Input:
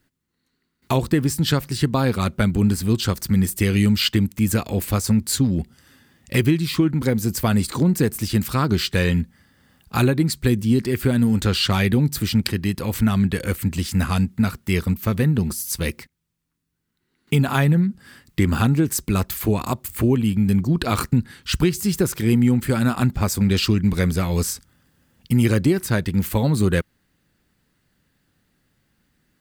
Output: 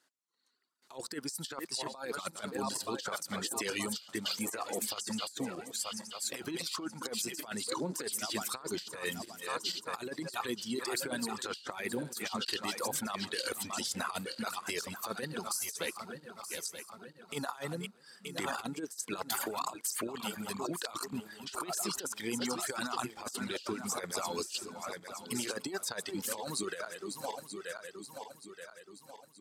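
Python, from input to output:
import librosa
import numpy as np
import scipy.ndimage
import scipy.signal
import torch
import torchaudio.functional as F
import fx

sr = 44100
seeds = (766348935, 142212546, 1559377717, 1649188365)

y = fx.reverse_delay_fb(x, sr, ms=463, feedback_pct=68, wet_db=-8.5)
y = scipy.signal.sosfilt(scipy.signal.butter(2, 800.0, 'highpass', fs=sr, output='sos'), y)
y = fx.dereverb_blind(y, sr, rt60_s=1.7)
y = scipy.signal.sosfilt(scipy.signal.butter(2, 8700.0, 'lowpass', fs=sr, output='sos'), y)
y = fx.peak_eq(y, sr, hz=2200.0, db=-10.5, octaves=1.3)
y = fx.over_compress(y, sr, threshold_db=-36.0, ratio=-0.5)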